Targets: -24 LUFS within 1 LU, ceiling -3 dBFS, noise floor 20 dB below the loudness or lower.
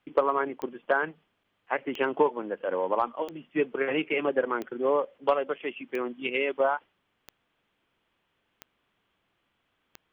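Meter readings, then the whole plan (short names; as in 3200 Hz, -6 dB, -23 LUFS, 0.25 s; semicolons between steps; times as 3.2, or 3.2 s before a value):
clicks 8; loudness -29.0 LUFS; peak -10.5 dBFS; loudness target -24.0 LUFS
-> de-click; gain +5 dB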